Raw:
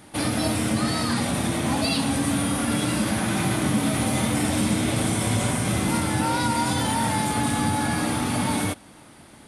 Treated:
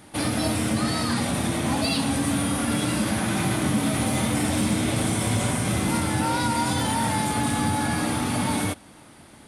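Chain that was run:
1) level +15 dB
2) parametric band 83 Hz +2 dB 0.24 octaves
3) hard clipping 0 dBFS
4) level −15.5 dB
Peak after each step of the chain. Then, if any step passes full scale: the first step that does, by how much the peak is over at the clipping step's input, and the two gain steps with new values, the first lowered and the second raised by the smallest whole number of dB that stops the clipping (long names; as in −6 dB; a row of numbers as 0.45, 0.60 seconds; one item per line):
+4.0, +4.0, 0.0, −15.5 dBFS
step 1, 4.0 dB
step 1 +11 dB, step 4 −11.5 dB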